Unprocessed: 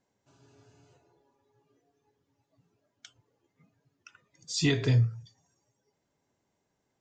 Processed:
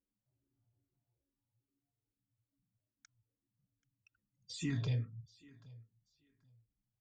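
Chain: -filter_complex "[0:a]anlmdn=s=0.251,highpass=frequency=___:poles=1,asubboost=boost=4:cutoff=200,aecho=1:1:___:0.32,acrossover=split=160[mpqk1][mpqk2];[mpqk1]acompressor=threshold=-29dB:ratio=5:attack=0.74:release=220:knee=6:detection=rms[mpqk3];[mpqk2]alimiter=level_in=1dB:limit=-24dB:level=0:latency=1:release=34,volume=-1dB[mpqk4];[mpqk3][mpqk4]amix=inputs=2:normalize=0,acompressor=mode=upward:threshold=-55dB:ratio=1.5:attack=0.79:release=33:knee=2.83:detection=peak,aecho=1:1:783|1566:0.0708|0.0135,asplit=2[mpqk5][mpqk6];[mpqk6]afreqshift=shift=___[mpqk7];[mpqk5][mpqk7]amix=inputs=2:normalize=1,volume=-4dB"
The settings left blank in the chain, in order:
94, 3.7, -2.4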